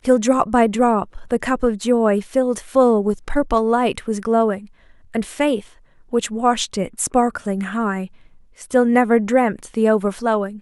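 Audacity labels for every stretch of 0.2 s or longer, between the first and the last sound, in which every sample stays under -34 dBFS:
4.650000	5.140000	silence
5.650000	6.130000	silence
8.070000	8.580000	silence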